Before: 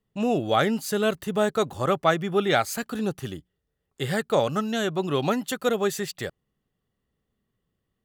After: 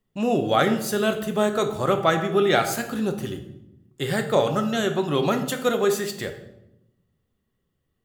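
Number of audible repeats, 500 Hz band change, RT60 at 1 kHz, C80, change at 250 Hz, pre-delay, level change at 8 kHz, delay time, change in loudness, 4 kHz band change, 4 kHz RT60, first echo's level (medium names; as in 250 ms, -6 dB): no echo, +2.5 dB, 0.75 s, 12.5 dB, +2.0 dB, 3 ms, +2.5 dB, no echo, +2.0 dB, +2.0 dB, 0.65 s, no echo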